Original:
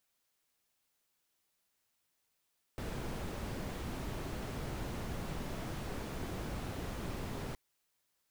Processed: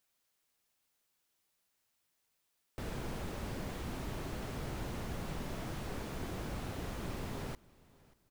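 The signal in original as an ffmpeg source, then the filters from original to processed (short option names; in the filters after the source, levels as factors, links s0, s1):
-f lavfi -i "anoisesrc=c=brown:a=0.0495:d=4.77:r=44100:seed=1"
-af "aecho=1:1:585|1170:0.0668|0.0187"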